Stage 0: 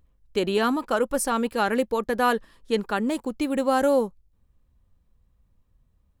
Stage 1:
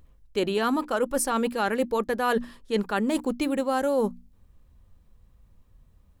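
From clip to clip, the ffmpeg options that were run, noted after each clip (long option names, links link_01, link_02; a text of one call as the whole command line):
ffmpeg -i in.wav -af "bandreject=frequency=60:width_type=h:width=6,bandreject=frequency=120:width_type=h:width=6,bandreject=frequency=180:width_type=h:width=6,bandreject=frequency=240:width_type=h:width=6,bandreject=frequency=300:width_type=h:width=6,areverse,acompressor=threshold=-30dB:ratio=5,areverse,volume=7.5dB" out.wav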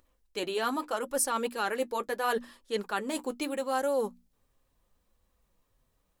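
ffmpeg -i in.wav -af "bass=frequency=250:gain=-14,treble=frequency=4000:gain=4,flanger=delay=3.4:depth=4.3:regen=-46:speed=0.77:shape=sinusoidal" out.wav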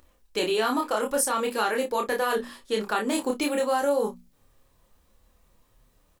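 ffmpeg -i in.wav -filter_complex "[0:a]acompressor=threshold=-31dB:ratio=6,asplit=2[link_01][link_02];[link_02]aecho=0:1:28|57:0.708|0.158[link_03];[link_01][link_03]amix=inputs=2:normalize=0,volume=8dB" out.wav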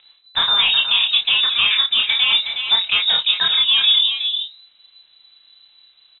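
ffmpeg -i in.wav -filter_complex "[0:a]asplit=2[link_01][link_02];[link_02]adelay=367.3,volume=-7dB,highshelf=frequency=4000:gain=-8.27[link_03];[link_01][link_03]amix=inputs=2:normalize=0,lowpass=frequency=3400:width_type=q:width=0.5098,lowpass=frequency=3400:width_type=q:width=0.6013,lowpass=frequency=3400:width_type=q:width=0.9,lowpass=frequency=3400:width_type=q:width=2.563,afreqshift=-4000,volume=8.5dB" out.wav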